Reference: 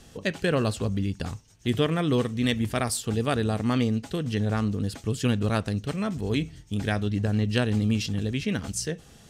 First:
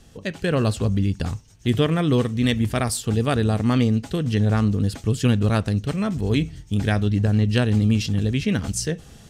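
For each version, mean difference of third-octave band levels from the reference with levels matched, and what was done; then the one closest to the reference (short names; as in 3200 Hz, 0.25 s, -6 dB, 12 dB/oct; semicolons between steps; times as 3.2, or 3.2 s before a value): 2.0 dB: low shelf 160 Hz +6 dB; AGC gain up to 6.5 dB; gain -2.5 dB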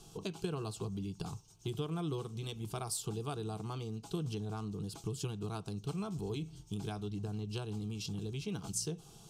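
4.5 dB: compressor 5:1, threshold -30 dBFS, peak gain reduction 11.5 dB; fixed phaser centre 370 Hz, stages 8; gain -1.5 dB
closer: first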